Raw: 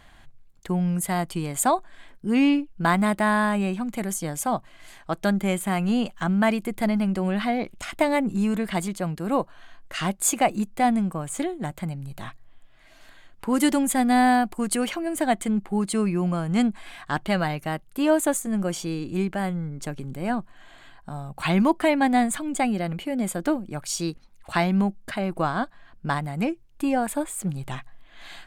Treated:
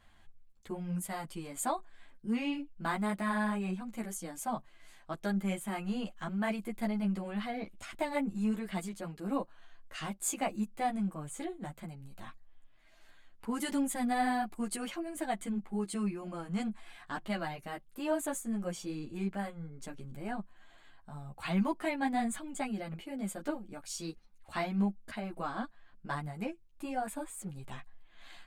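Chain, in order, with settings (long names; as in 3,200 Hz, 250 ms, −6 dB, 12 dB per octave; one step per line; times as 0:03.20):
string-ensemble chorus
level −8.5 dB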